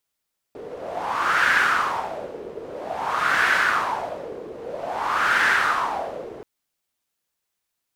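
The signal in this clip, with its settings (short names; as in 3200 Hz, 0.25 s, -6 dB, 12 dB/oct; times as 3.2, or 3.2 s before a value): wind-like swept noise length 5.88 s, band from 430 Hz, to 1600 Hz, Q 4.7, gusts 3, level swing 17.5 dB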